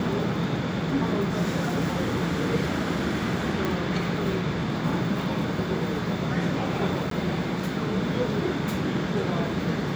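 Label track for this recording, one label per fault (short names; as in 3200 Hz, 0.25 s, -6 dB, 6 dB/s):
3.650000	3.650000	pop
7.100000	7.110000	gap 13 ms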